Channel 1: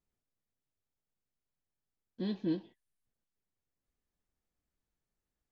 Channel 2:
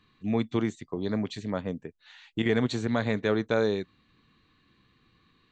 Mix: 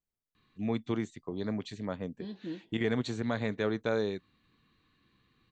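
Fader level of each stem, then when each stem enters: -6.5 dB, -5.0 dB; 0.00 s, 0.35 s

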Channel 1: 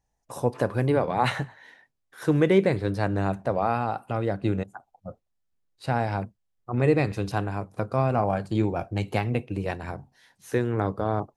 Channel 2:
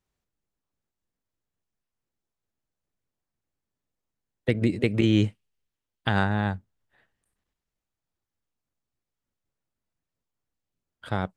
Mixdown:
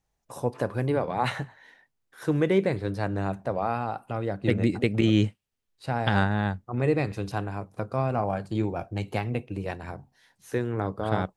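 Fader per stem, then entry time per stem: -3.0 dB, -0.5 dB; 0.00 s, 0.00 s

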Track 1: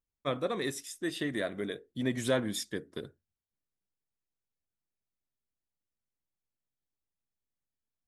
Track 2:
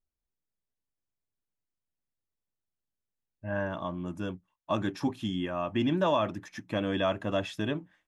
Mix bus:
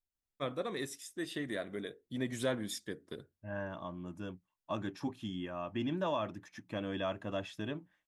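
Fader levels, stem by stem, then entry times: -5.0 dB, -8.0 dB; 0.15 s, 0.00 s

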